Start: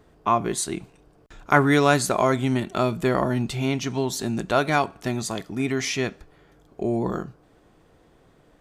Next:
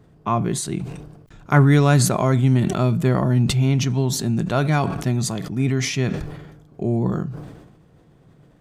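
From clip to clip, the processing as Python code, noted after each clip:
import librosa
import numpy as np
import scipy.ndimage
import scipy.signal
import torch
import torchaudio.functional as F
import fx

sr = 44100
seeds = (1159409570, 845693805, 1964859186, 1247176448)

y = fx.peak_eq(x, sr, hz=140.0, db=14.0, octaves=1.4)
y = fx.sustainer(y, sr, db_per_s=49.0)
y = y * 10.0 ** (-3.0 / 20.0)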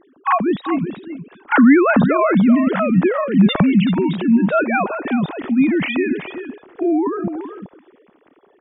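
y = fx.sine_speech(x, sr)
y = y + 10.0 ** (-10.5 / 20.0) * np.pad(y, (int(381 * sr / 1000.0), 0))[:len(y)]
y = y * 10.0 ** (3.0 / 20.0)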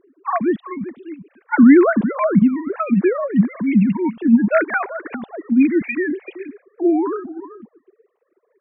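y = fx.sine_speech(x, sr)
y = y * 10.0 ** (-1.0 / 20.0)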